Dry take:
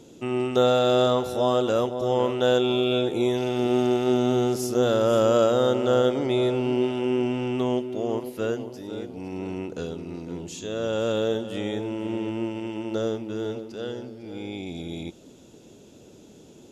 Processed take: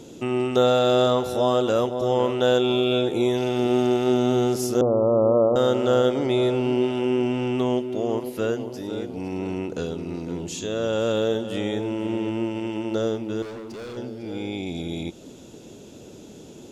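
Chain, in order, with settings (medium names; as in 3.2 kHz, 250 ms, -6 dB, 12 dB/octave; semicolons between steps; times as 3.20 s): 4.81–5.56 s: steep low-pass 1.2 kHz 96 dB/octave; in parallel at 0 dB: compression, threshold -35 dBFS, peak gain reduction 17.5 dB; 13.42–13.97 s: on the sum: hard clipper -34 dBFS, distortion -24 dB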